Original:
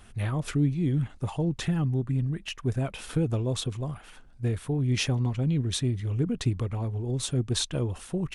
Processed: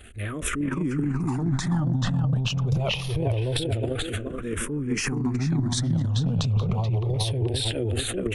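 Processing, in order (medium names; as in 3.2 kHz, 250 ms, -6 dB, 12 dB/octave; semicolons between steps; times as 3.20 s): recorder AGC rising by 15 dB/s; filtered feedback delay 429 ms, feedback 38%, low-pass 2.4 kHz, level -3 dB; compression, threshold -25 dBFS, peak gain reduction 7 dB; transient shaper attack -6 dB, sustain +12 dB; barber-pole phaser -0.25 Hz; trim +5.5 dB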